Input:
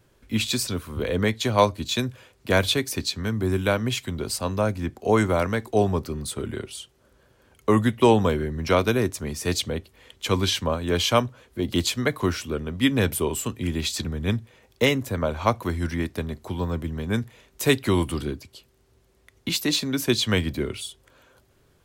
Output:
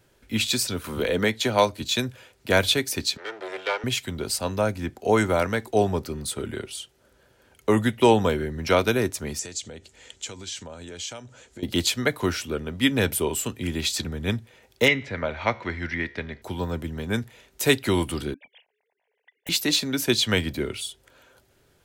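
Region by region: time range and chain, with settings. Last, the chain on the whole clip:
0:00.84–0:01.82: parametric band 89 Hz −5 dB 1 octave + multiband upward and downward compressor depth 40%
0:03.17–0:03.84: lower of the sound and its delayed copy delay 2.2 ms + band-pass filter 590–4,200 Hz
0:09.39–0:11.63: notch filter 1,100 Hz, Q 7.2 + downward compressor 12 to 1, threshold −35 dBFS + low-pass with resonance 7,300 Hz, resonance Q 4.4
0:14.88–0:16.42: low-pass filter 5,300 Hz 24 dB per octave + parametric band 2,000 Hz +11.5 dB 0.59 octaves + tuned comb filter 70 Hz, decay 0.72 s, mix 40%
0:18.34–0:19.49: three sine waves on the formant tracks + wrap-around overflow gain 32 dB + phaser with its sweep stopped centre 1,300 Hz, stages 6
whole clip: low-shelf EQ 330 Hz −5.5 dB; notch filter 1,100 Hz, Q 7.5; level +2 dB

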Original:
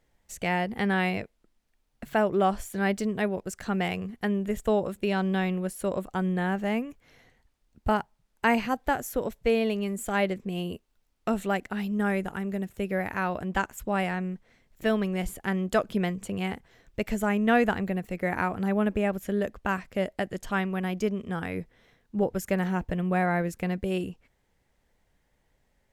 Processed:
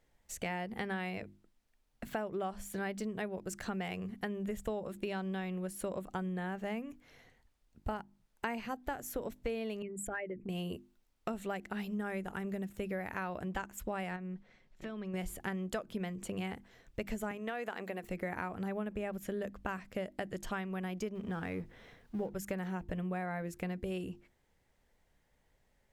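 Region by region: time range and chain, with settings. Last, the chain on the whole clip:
0:09.82–0:10.49: spectral envelope exaggerated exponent 2 + flat-topped bell 2,000 Hz +9 dB 1.1 octaves + downward compressor 3 to 1, threshold −35 dBFS
0:14.16–0:15.14: low-pass filter 5,500 Hz + downward compressor, threshold −36 dBFS + comb filter 5.4 ms, depth 31%
0:17.31–0:18.03: high-pass filter 380 Hz + downward compressor 3 to 1, threshold −28 dBFS
0:21.15–0:22.35: mu-law and A-law mismatch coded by mu + high-shelf EQ 4,800 Hz −7 dB
whole clip: mains-hum notches 50/100/150/200/250/300/350 Hz; downward compressor, threshold −32 dBFS; level −2.5 dB

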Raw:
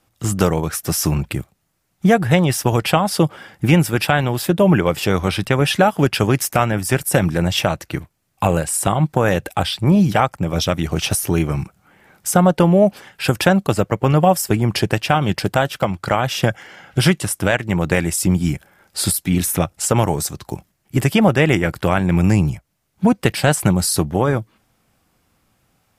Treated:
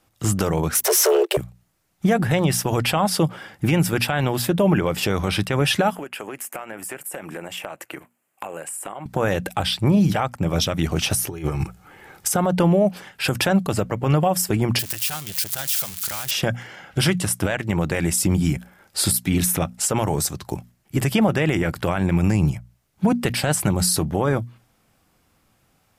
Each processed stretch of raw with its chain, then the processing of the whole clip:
0:00.75–0:01.37: leveller curve on the samples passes 3 + high-pass filter 69 Hz + frequency shifter +280 Hz
0:05.95–0:09.06: high-pass filter 360 Hz + flat-topped bell 4,600 Hz −10.5 dB 1 octave + downward compressor, threshold −29 dBFS
0:11.28–0:12.31: compressor whose output falls as the input rises −23 dBFS, ratio −0.5 + comb filter 2.4 ms, depth 37%
0:14.79–0:16.31: spike at every zero crossing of −9 dBFS + guitar amp tone stack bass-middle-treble 5-5-5 + saturating transformer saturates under 1,300 Hz
whole clip: mains-hum notches 60/120/180/240 Hz; brickwall limiter −9.5 dBFS

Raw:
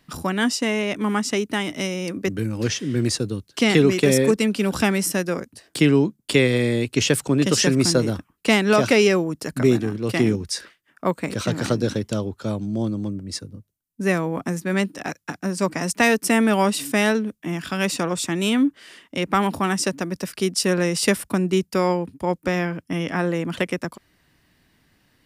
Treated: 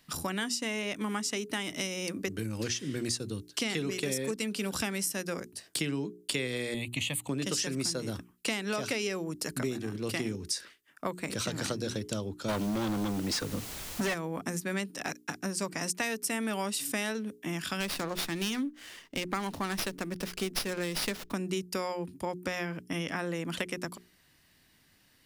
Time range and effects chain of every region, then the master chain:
0:06.74–0:07.29: high-pass filter 42 Hz + phaser with its sweep stopped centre 1,500 Hz, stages 6
0:12.48–0:14.13: mid-hump overdrive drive 33 dB, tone 2,000 Hz, clips at −8.5 dBFS + background noise pink −39 dBFS
0:17.80–0:21.33: dynamic equaliser 6,300 Hz, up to +4 dB, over −34 dBFS, Q 0.78 + windowed peak hold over 5 samples
whole clip: high-shelf EQ 2,600 Hz +9 dB; mains-hum notches 60/120/180/240/300/360/420 Hz; downward compressor 5 to 1, threshold −24 dBFS; level −6 dB

